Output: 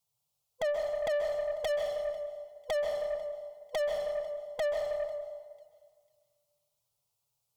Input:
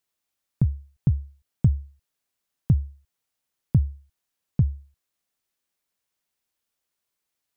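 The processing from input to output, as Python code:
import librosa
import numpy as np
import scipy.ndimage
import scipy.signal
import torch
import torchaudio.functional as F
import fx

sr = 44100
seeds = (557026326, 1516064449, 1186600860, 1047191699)

y = fx.band_swap(x, sr, width_hz=500)
y = fx.peak_eq(y, sr, hz=120.0, db=12.5, octaves=1.1)
y = y + 0.44 * np.pad(y, (int(6.9 * sr / 1000.0), 0))[:len(y)]
y = 10.0 ** (-18.0 / 20.0) * (np.abs((y / 10.0 ** (-18.0 / 20.0) + 3.0) % 4.0 - 2.0) - 1.0)
y = fx.fixed_phaser(y, sr, hz=720.0, stages=4)
y = fx.echo_thinned(y, sr, ms=496, feedback_pct=29, hz=940.0, wet_db=-23.5)
y = fx.rev_plate(y, sr, seeds[0], rt60_s=1.8, hf_ratio=0.55, predelay_ms=120, drr_db=2.0)
y = fx.tube_stage(y, sr, drive_db=27.0, bias=0.2)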